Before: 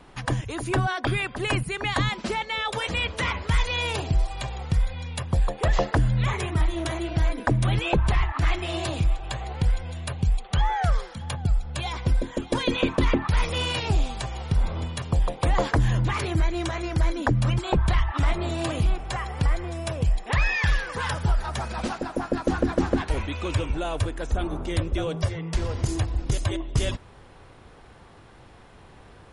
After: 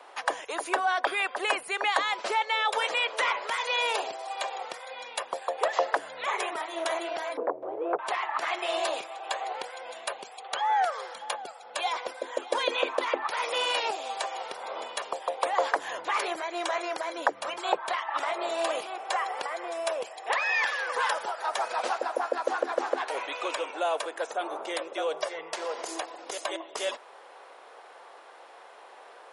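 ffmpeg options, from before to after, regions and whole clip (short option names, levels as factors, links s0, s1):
-filter_complex "[0:a]asettb=1/sr,asplit=3[s0][s1][s2];[s0]atrim=end=7.374[s3];[s1]atrim=start=7.37:end=7.99,asetpts=PTS-STARTPTS,afade=t=in:d=0.004:c=qsin,afade=t=out:st=0.616:d=0.004:c=qsin,acompressor=threshold=0.0355:ratio=3:attack=3.2:release=140:knee=1:detection=peak,lowpass=f=420:t=q:w=2.1,aeval=exprs='0.133*sin(PI/2*2*val(0)/0.133)':c=same[s4];[s2]atrim=start=7.986[s5];[s3][s4]acrossfade=d=0.004:c1=hsin:c2=qsin[s6];[s6][s5]acrossfade=d=0.004:c1=qsin:c2=hsin,equalizer=f=710:w=0.58:g=5.5,acompressor=threshold=0.0794:ratio=2,highpass=f=480:w=0.5412,highpass=f=480:w=1.3066"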